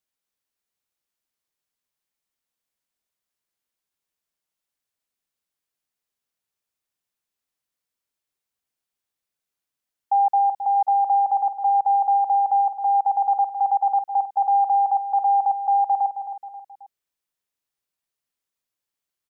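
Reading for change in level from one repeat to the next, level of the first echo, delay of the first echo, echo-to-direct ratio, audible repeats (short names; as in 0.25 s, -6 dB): -7.5 dB, -10.0 dB, 0.267 s, -9.0 dB, 3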